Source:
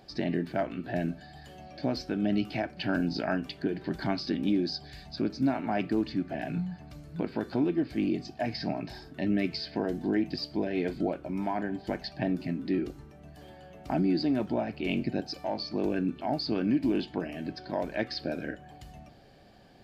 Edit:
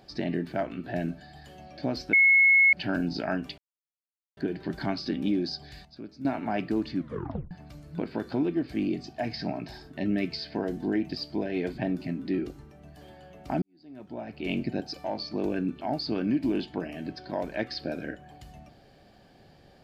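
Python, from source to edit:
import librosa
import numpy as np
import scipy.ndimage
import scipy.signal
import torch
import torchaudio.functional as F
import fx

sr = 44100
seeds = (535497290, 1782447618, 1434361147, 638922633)

y = fx.edit(x, sr, fx.bleep(start_s=2.13, length_s=0.6, hz=2180.0, db=-15.5),
    fx.insert_silence(at_s=3.58, length_s=0.79),
    fx.clip_gain(start_s=5.06, length_s=0.4, db=-12.0),
    fx.tape_stop(start_s=6.19, length_s=0.53),
    fx.cut(start_s=10.99, length_s=1.19),
    fx.fade_in_span(start_s=14.02, length_s=0.89, curve='qua'), tone=tone)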